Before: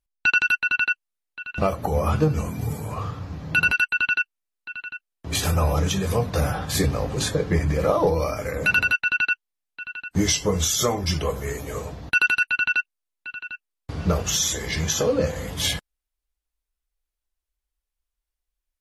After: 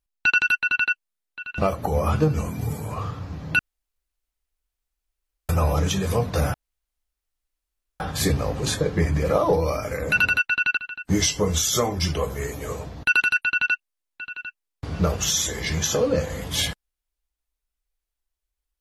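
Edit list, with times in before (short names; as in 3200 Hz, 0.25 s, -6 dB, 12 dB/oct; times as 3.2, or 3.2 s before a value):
3.59–5.49 room tone
6.54 insert room tone 1.46 s
9.31–9.83 cut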